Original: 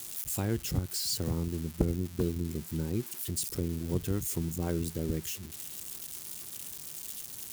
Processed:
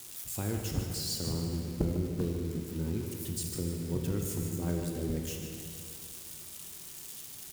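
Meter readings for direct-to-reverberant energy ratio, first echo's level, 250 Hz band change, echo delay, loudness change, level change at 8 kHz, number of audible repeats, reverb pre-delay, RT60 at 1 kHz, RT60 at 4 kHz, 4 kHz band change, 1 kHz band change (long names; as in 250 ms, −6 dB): 1.0 dB, −9.0 dB, −1.0 dB, 150 ms, −1.5 dB, −2.5 dB, 1, 19 ms, 2.3 s, 1.8 s, −1.5 dB, −1.0 dB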